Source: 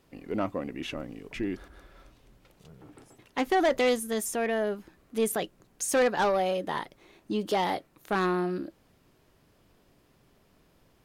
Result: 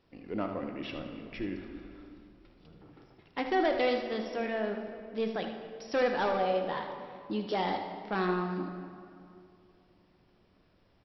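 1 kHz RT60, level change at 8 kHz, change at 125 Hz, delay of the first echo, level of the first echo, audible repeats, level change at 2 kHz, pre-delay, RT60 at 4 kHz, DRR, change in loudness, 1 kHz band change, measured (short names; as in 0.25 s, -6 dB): 2.4 s, under -25 dB, -2.0 dB, 77 ms, -10.0 dB, 1, -3.5 dB, 3 ms, 1.5 s, 3.5 dB, -3.5 dB, -3.0 dB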